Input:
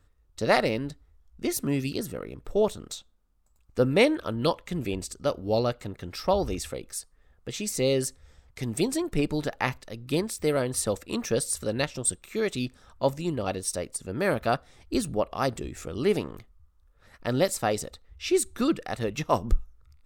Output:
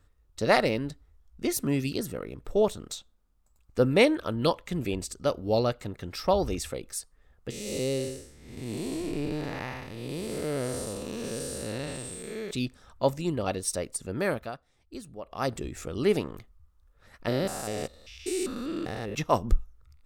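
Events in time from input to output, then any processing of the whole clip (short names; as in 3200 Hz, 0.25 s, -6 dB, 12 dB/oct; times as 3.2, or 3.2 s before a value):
7.5–12.51 time blur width 0.309 s
14.02–15.71 dip -14.5 dB, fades 0.50 s equal-power
17.28–19.15 stepped spectrum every 0.2 s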